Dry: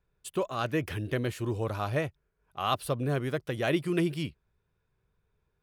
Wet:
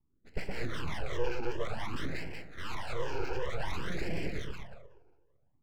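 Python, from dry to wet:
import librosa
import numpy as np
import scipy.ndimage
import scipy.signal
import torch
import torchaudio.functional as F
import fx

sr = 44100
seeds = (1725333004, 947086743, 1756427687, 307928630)

y = fx.tilt_eq(x, sr, slope=2.0)
y = y + 0.76 * np.pad(y, (int(1.0 * sr / 1000.0), 0))[:len(y)]
y = fx.echo_split(y, sr, split_hz=530.0, low_ms=117, high_ms=184, feedback_pct=52, wet_db=-4.5)
y = (np.mod(10.0 ** (23.0 / 20.0) * y + 1.0, 2.0) - 1.0) / 10.0 ** (23.0 / 20.0)
y = scipy.signal.sosfilt(scipy.signal.butter(2, 50.0, 'highpass', fs=sr, output='sos'), y)
y = fx.rev_fdn(y, sr, rt60_s=1.1, lf_ratio=1.0, hf_ratio=0.95, size_ms=26.0, drr_db=11.5)
y = fx.tube_stage(y, sr, drive_db=35.0, bias=0.2)
y = fx.peak_eq(y, sr, hz=230.0, db=14.0, octaves=0.64)
y = fx.env_lowpass(y, sr, base_hz=340.0, full_db=-31.0)
y = scipy.signal.sosfilt(scipy.signal.butter(2, 2300.0, 'lowpass', fs=sr, output='sos'), y)
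y = np.abs(y)
y = fx.phaser_stages(y, sr, stages=12, low_hz=190.0, high_hz=1200.0, hz=0.54, feedback_pct=20)
y = y * 10.0 ** (5.0 / 20.0)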